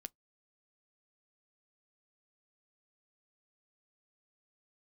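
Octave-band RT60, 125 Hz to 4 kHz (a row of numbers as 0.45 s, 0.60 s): 0.20 s, 0.15 s, 0.15 s, 0.15 s, 0.10 s, 0.10 s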